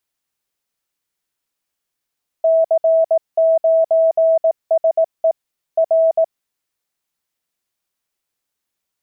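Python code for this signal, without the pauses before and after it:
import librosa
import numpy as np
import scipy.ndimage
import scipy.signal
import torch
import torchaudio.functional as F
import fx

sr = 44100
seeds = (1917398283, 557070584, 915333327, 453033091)

y = fx.morse(sr, text='C9SE R', wpm=18, hz=651.0, level_db=-10.0)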